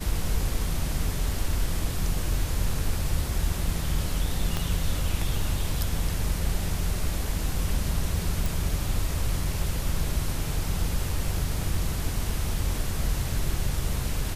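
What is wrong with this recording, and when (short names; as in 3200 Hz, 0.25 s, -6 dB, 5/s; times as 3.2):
4.57 pop -13 dBFS
8.46 pop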